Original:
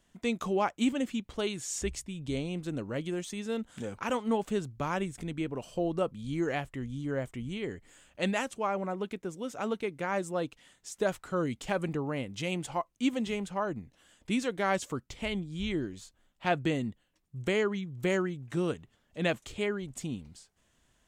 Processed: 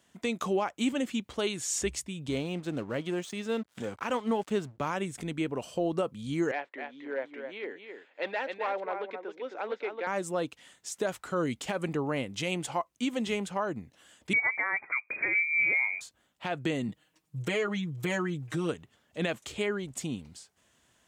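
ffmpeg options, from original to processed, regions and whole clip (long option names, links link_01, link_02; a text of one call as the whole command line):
ffmpeg -i in.wav -filter_complex "[0:a]asettb=1/sr,asplit=3[link_01][link_02][link_03];[link_01]atrim=end=2.294[link_04];[link_02]atrim=start=2.29:end=4.87,asetpts=PTS-STARTPTS,afade=type=in:duration=0.004:curve=qsin,afade=type=out:start_time=2.576:duration=0.004:curve=qsin,highshelf=frequency=8900:gain=-12,aeval=exprs='sgn(val(0))*max(abs(val(0))-0.00188,0)':channel_layout=same[link_05];[link_03]atrim=start=4.866[link_06];[link_04][link_05]acrossfade=duration=0.004:curve1=hsin:curve2=qsin[link_07];[link_07][link_06]acrossfade=duration=0.004:curve1=qsin:curve2=hsin,asettb=1/sr,asplit=3[link_08][link_09][link_10];[link_08]atrim=end=6.514[link_11];[link_09]atrim=start=6.51:end=10.07,asetpts=PTS-STARTPTS,afade=type=in:duration=0.004:curve=qsin,afade=type=out:start_time=3.556:duration=0.004:curve=qsin,aecho=1:1:266:0.422,atrim=end_sample=156996,asoftclip=type=hard:threshold=-26.5dB,highpass=frequency=360:width=0.5412,highpass=frequency=360:width=1.3066,equalizer=frequency=380:width_type=q:width=4:gain=-4,equalizer=frequency=660:width_type=q:width=4:gain=-4,equalizer=frequency=1200:width_type=q:width=4:gain=-7,equalizer=frequency=3000:width_type=q:width=4:gain=-9,lowpass=frequency=3500:width=0.5412,lowpass=frequency=3500:width=1.3066[link_12];[link_10]atrim=start=10.066[link_13];[link_11][link_12]acrossfade=duration=0.004:curve1=hsin:curve2=qsin[link_14];[link_14][link_13]acrossfade=duration=0.004:curve1=qsin:curve2=hsin,asettb=1/sr,asplit=3[link_15][link_16][link_17];[link_15]atrim=end=14.334[link_18];[link_16]atrim=start=14.33:end=16.01,asetpts=PTS-STARTPTS,afade=type=in:duration=0.004:curve=qsin,afade=type=out:start_time=1.676:duration=0.004:curve=qsin,acontrast=72,lowpass=frequency=2100:width_type=q:width=0.5098,lowpass=frequency=2100:width_type=q:width=0.6013,lowpass=frequency=2100:width_type=q:width=0.9,lowpass=frequency=2100:width_type=q:width=2.563,afreqshift=-2500[link_19];[link_17]atrim=start=16.006[link_20];[link_18][link_19]acrossfade=duration=0.004:curve1=hsin:curve2=qsin[link_21];[link_21][link_20]acrossfade=duration=0.004:curve1=qsin:curve2=hsin,asettb=1/sr,asplit=3[link_22][link_23][link_24];[link_22]atrim=end=16.884[link_25];[link_23]atrim=start=16.88:end=18.69,asetpts=PTS-STARTPTS,afade=type=in:duration=0.004:curve=qsin,afade=type=out:start_time=1.806:duration=0.004:curve=qsin,aecho=1:1:6.4:0.91,atrim=end_sample=79821,acompressor=threshold=-30dB:ratio=3:attack=3.2:release=140:knee=1:detection=peak[link_26];[link_24]atrim=start=18.686[link_27];[link_25][link_26]acrossfade=duration=0.004:curve1=hsin:curve2=qsin[link_28];[link_28][link_27]acrossfade=duration=0.004:curve1=qsin:curve2=hsin,highpass=frequency=59:width=0.5412,highpass=frequency=59:width=1.3066,lowshelf=frequency=220:gain=-6.5,alimiter=limit=-24dB:level=0:latency=1:release=148,volume=4.5dB" out.wav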